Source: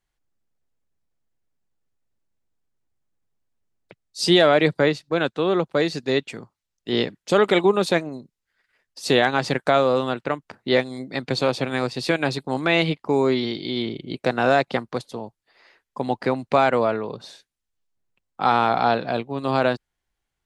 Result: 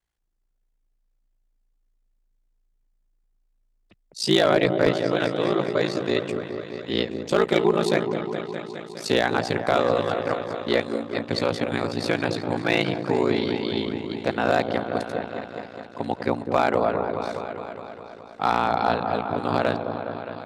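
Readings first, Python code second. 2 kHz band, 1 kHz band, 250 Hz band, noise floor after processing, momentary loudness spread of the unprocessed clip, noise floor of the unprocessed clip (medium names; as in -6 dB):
-3.0 dB, -2.0 dB, -1.0 dB, -70 dBFS, 13 LU, -82 dBFS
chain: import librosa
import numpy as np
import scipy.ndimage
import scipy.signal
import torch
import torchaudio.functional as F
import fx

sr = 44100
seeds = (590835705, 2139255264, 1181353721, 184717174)

y = fx.echo_opening(x, sr, ms=207, hz=750, octaves=1, feedback_pct=70, wet_db=-6)
y = y * np.sin(2.0 * np.pi * 28.0 * np.arange(len(y)) / sr)
y = fx.clip_asym(y, sr, top_db=-10.5, bottom_db=-8.0)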